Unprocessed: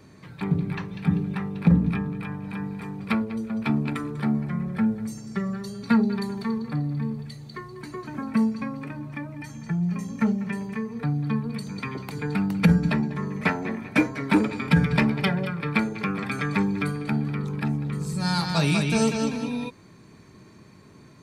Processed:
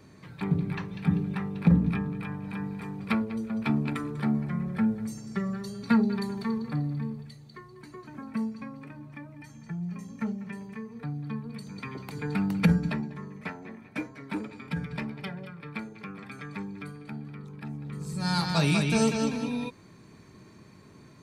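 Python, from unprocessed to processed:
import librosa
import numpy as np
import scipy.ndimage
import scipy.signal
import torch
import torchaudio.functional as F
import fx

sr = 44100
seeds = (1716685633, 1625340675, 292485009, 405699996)

y = fx.gain(x, sr, db=fx.line((6.84, -2.5), (7.45, -9.0), (11.42, -9.0), (12.54, -2.0), (13.46, -13.5), (17.58, -13.5), (18.37, -2.0)))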